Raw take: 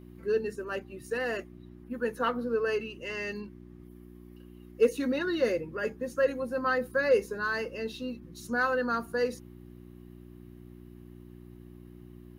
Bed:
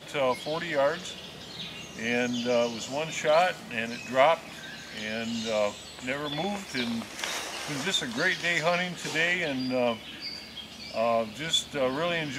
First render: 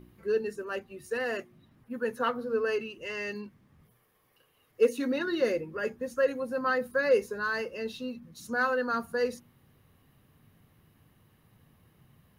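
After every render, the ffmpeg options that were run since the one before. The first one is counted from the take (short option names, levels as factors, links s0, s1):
-af "bandreject=f=60:t=h:w=4,bandreject=f=120:t=h:w=4,bandreject=f=180:t=h:w=4,bandreject=f=240:t=h:w=4,bandreject=f=300:t=h:w=4,bandreject=f=360:t=h:w=4"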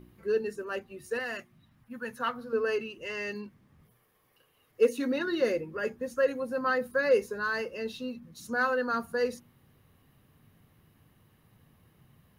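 -filter_complex "[0:a]asettb=1/sr,asplit=3[s0][s1][s2];[s0]atrim=end=1.194[s3];[s1]atrim=start=1.19:end=2.53,asetpts=PTS-STARTPTS,afade=t=in:d=0.004:c=qsin,afade=t=out:st=1.336:d=0.004:c=qsin,equalizer=f=400:w=1.2:g=-11.5[s4];[s2]atrim=start=2.526[s5];[s3][s4]acrossfade=d=0.004:c1=hsin:c2=qsin[s6];[s6][s5]acrossfade=d=0.004:c1=qsin:c2=hsin"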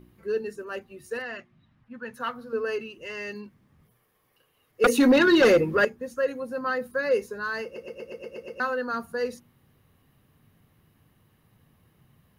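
-filter_complex "[0:a]asettb=1/sr,asplit=3[s0][s1][s2];[s0]atrim=end=1.224[s3];[s1]atrim=start=1.22:end=2.14,asetpts=PTS-STARTPTS,afade=t=in:d=0.004:c=qsin,afade=t=out:st=0.916:d=0.004:c=qsin,lowpass=4100[s4];[s2]atrim=start=2.136[s5];[s3][s4]acrossfade=d=0.004:c1=hsin:c2=qsin[s6];[s6][s5]acrossfade=d=0.004:c1=qsin:c2=hsin,asettb=1/sr,asplit=3[s7][s8][s9];[s7]atrim=end=4.844[s10];[s8]atrim=start=4.84:end=5.85,asetpts=PTS-STARTPTS,afade=t=in:d=0.004:c=qsin,afade=t=out:st=1.006:d=0.004:c=qsin,aeval=exprs='0.237*sin(PI/2*3.16*val(0)/0.237)':c=same[s11];[s9]atrim=start=5.846[s12];[s10][s11]acrossfade=d=0.004:c1=hsin:c2=qsin[s13];[s13][s12]acrossfade=d=0.004:c1=qsin:c2=hsin,asplit=9[s14][s15][s16][s17][s18][s19][s20][s21][s22];[s14]atrim=end=7.762[s23];[s15]atrim=start=7.638:end=7.762[s24];[s16]atrim=start=7.638:end=7.762[s25];[s17]atrim=start=7.638:end=7.762[s26];[s18]atrim=start=7.638:end=7.762[s27];[s19]atrim=start=7.638:end=7.762[s28];[s20]atrim=start=7.638:end=7.762[s29];[s21]atrim=start=7.638:end=7.762[s30];[s22]atrim=start=8.598[s31];[s23][s24]acrossfade=d=0.004:c1=hsin:c2=hsin[s32];[s32][s25]acrossfade=d=0.004:c1=hsin:c2=hsin[s33];[s33][s26]acrossfade=d=0.004:c1=hsin:c2=hsin[s34];[s34][s27]acrossfade=d=0.004:c1=hsin:c2=hsin[s35];[s35][s28]acrossfade=d=0.004:c1=hsin:c2=hsin[s36];[s36][s29]acrossfade=d=0.004:c1=hsin:c2=hsin[s37];[s37][s30]acrossfade=d=0.004:c1=hsin:c2=hsin[s38];[s38][s31]acrossfade=d=0.004:c1=hsin:c2=hsin"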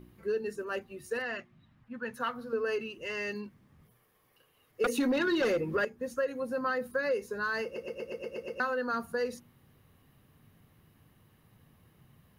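-af "acompressor=threshold=0.0398:ratio=4"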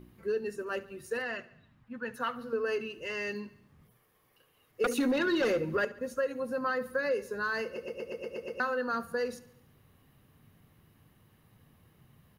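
-af "aecho=1:1:71|142|213|284|355:0.112|0.0617|0.0339|0.0187|0.0103"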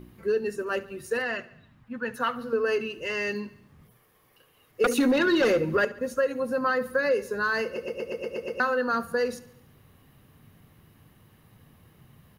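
-af "volume=2"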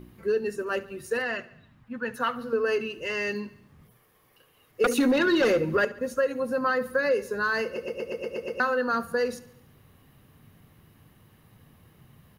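-af anull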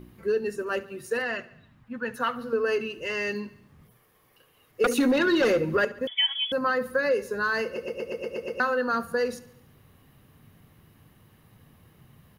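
-filter_complex "[0:a]asettb=1/sr,asplit=3[s0][s1][s2];[s0]atrim=end=0.814[s3];[s1]atrim=start=0.81:end=1.22,asetpts=PTS-STARTPTS,afade=t=in:d=0.004:c=qsin,afade=t=out:st=0.406:d=0.004:c=qsin,highpass=98[s4];[s2]atrim=start=1.216[s5];[s3][s4]acrossfade=d=0.004:c1=hsin:c2=qsin[s6];[s6][s5]acrossfade=d=0.004:c1=qsin:c2=hsin,asettb=1/sr,asplit=3[s7][s8][s9];[s7]atrim=end=6.074[s10];[s8]atrim=start=6.07:end=6.52,asetpts=PTS-STARTPTS,afade=t=in:d=0.004:c=qsin,afade=t=out:st=0.446:d=0.004:c=qsin,lowpass=f=3100:t=q:w=0.5098,lowpass=f=3100:t=q:w=0.6013,lowpass=f=3100:t=q:w=0.9,lowpass=f=3100:t=q:w=2.563,afreqshift=-3600[s11];[s9]atrim=start=6.516[s12];[s10][s11]acrossfade=d=0.004:c1=hsin:c2=qsin[s13];[s13][s12]acrossfade=d=0.004:c1=qsin:c2=hsin"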